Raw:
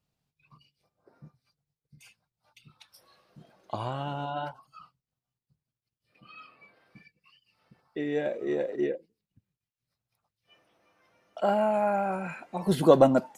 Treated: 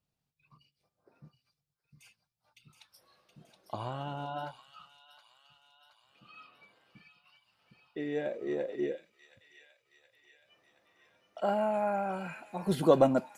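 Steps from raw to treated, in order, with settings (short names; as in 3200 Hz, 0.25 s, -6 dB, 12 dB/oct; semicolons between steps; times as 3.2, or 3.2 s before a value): thin delay 0.722 s, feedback 61%, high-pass 2600 Hz, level -5.5 dB; gain -4.5 dB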